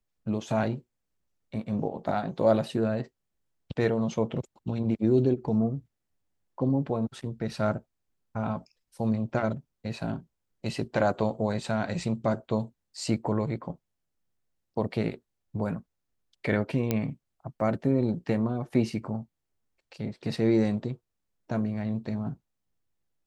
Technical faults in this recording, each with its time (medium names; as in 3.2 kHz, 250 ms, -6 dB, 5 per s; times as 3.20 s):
16.91 s: pop -12 dBFS